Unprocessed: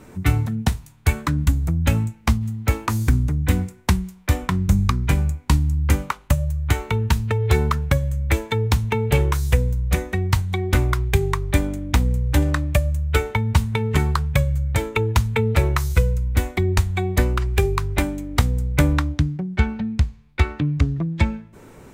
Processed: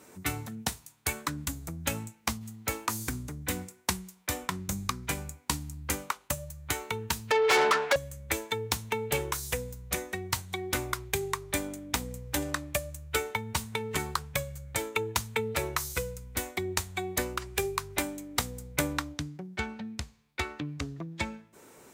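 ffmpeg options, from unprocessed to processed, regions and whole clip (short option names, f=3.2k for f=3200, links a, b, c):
-filter_complex "[0:a]asettb=1/sr,asplit=3[a][b][c];[a]atrim=end=7.314[d];[b]atrim=start=7.31:end=7.96,asetpts=PTS-STARTPTS,afade=t=in:d=0.004:c=qsin,afade=t=out:st=0.646:d=0.004:c=qsin,highpass=440,lowpass=3.7k,asplit=2[e][f];[f]highpass=f=720:p=1,volume=33dB,asoftclip=type=tanh:threshold=-7.5dB[g];[e][g]amix=inputs=2:normalize=0,lowpass=f=2.7k:p=1,volume=-6dB[h];[c]atrim=start=7.956[i];[d][h]acrossfade=d=0.004:c1=hsin:c2=qsin[j];[j][i]acrossfade=d=0.004:c1=qsin:c2=hsin,highpass=f=150:p=1,bass=f=250:g=-8,treble=f=4k:g=8,volume=-7dB"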